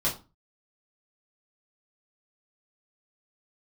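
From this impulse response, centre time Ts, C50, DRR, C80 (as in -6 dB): 22 ms, 11.0 dB, -6.5 dB, 16.5 dB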